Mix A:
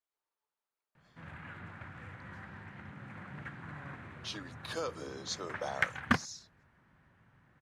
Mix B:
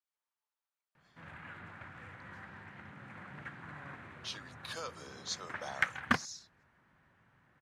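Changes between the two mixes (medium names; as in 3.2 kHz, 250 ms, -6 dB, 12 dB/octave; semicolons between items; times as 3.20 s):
speech: add high-pass 1 kHz 6 dB/octave; master: add bass shelf 250 Hz -6.5 dB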